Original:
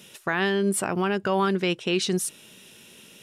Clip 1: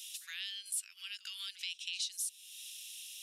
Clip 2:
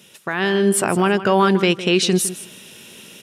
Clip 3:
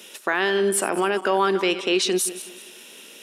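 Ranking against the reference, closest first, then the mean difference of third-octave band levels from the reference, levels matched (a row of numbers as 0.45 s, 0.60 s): 2, 3, 1; 2.5 dB, 5.0 dB, 18.0 dB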